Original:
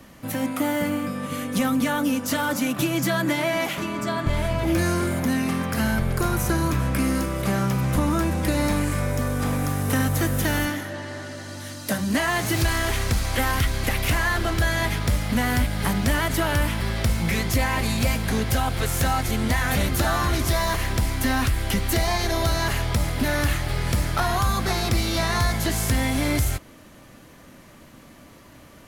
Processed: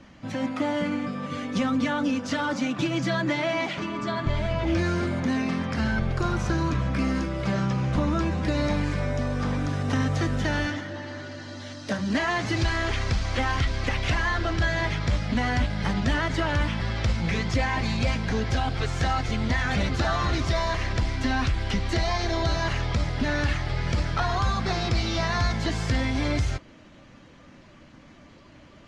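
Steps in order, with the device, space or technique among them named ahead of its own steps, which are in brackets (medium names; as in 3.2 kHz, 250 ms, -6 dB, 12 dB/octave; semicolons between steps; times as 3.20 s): clip after many re-uploads (low-pass 5.8 kHz 24 dB/octave; coarse spectral quantiser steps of 15 dB); trim -2 dB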